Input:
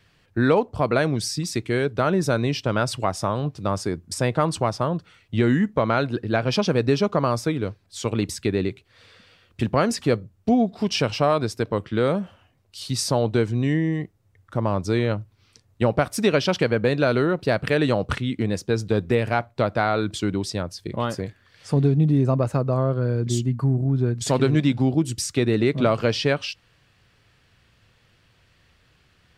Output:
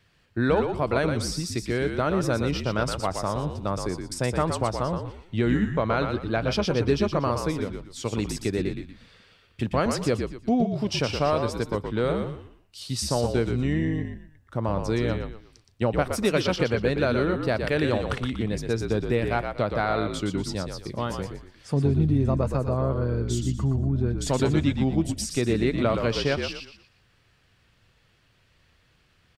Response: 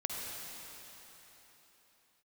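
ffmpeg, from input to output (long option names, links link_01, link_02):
-filter_complex "[0:a]asplit=5[link_01][link_02][link_03][link_04][link_05];[link_02]adelay=119,afreqshift=-54,volume=-6dB[link_06];[link_03]adelay=238,afreqshift=-108,volume=-15.9dB[link_07];[link_04]adelay=357,afreqshift=-162,volume=-25.8dB[link_08];[link_05]adelay=476,afreqshift=-216,volume=-35.7dB[link_09];[link_01][link_06][link_07][link_08][link_09]amix=inputs=5:normalize=0,volume=-4dB"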